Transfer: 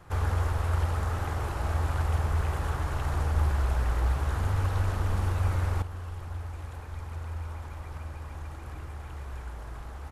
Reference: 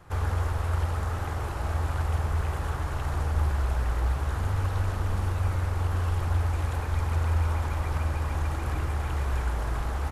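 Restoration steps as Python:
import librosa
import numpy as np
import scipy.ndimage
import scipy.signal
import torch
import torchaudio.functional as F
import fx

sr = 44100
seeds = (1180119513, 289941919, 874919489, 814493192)

y = fx.gain(x, sr, db=fx.steps((0.0, 0.0), (5.82, 11.0)))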